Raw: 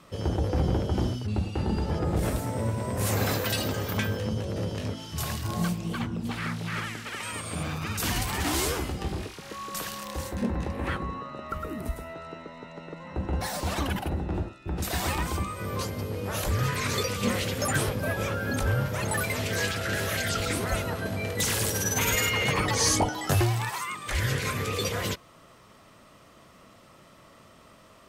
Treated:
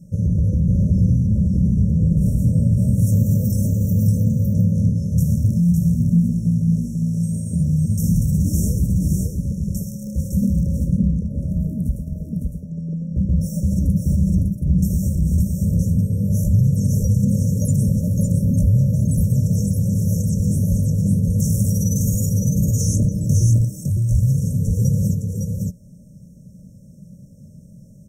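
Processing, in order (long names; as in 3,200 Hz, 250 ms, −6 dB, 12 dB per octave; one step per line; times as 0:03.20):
loose part that buzzes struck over −31 dBFS, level −25 dBFS
low shelf with overshoot 250 Hz +11.5 dB, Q 3
brickwall limiter −10.5 dBFS, peak gain reduction 10 dB
linear-phase brick-wall band-stop 630–5,400 Hz
single-tap delay 558 ms −3.5 dB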